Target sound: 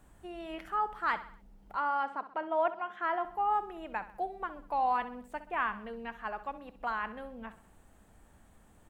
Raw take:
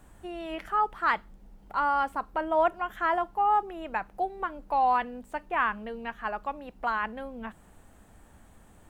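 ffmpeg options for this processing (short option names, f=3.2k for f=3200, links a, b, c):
-filter_complex "[0:a]asettb=1/sr,asplit=3[a][b][c];[a]atrim=end=1.764[d];[b]atrim=start=1.76:end=3.25,asetpts=PTS-STARTPTS,afade=t=in:d=0.004:c=qsin,afade=t=out:st=1.486:d=0.004:c=qsin,highpass=250,lowpass=4.2k[e];[c]atrim=start=3.246[f];[d][e]acrossfade=d=0.004:c1=hsin:c2=qsin[g];[g][f]acrossfade=d=0.004:c1=qsin:c2=hsin,asplit=2[h][i];[i]aecho=0:1:65|130|195|260:0.2|0.0918|0.0422|0.0194[j];[h][j]amix=inputs=2:normalize=0,volume=-5.5dB"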